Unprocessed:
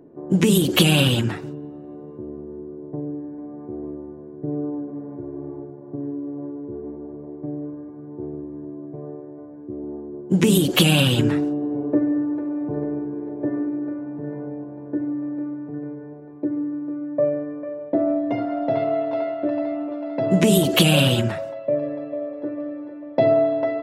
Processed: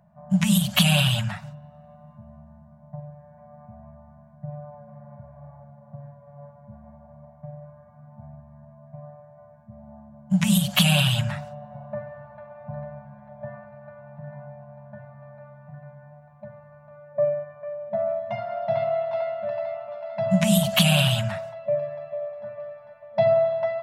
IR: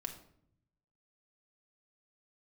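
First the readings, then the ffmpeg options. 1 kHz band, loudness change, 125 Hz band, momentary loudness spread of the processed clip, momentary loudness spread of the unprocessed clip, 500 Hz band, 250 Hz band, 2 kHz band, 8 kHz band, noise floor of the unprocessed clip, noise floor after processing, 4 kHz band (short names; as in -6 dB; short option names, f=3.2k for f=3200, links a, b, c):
-1.5 dB, -1.0 dB, -1.5 dB, 23 LU, 19 LU, -3.5 dB, -6.5 dB, -1.5 dB, -1.5 dB, -39 dBFS, -51 dBFS, -1.5 dB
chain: -filter_complex "[0:a]asplit=2[a][b];[1:a]atrim=start_sample=2205,afade=t=out:st=0.38:d=0.01,atrim=end_sample=17199[c];[b][c]afir=irnorm=-1:irlink=0,volume=-15.5dB[d];[a][d]amix=inputs=2:normalize=0,afftfilt=real='re*(1-between(b*sr/4096,220,560))':imag='im*(1-between(b*sr/4096,220,560))':win_size=4096:overlap=0.75,volume=-2.5dB"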